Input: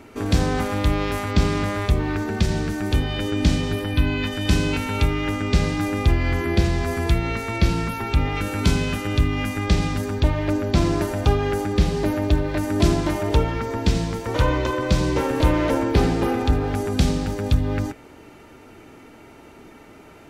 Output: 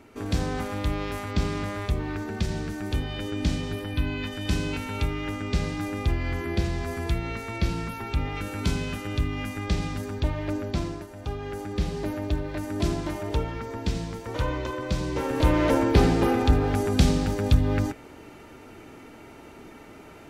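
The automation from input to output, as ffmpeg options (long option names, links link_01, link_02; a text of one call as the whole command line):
ffmpeg -i in.wav -af "volume=11dB,afade=type=out:start_time=10.63:duration=0.44:silence=0.266073,afade=type=in:start_time=11.07:duration=0.79:silence=0.298538,afade=type=in:start_time=15.1:duration=0.61:silence=0.421697" out.wav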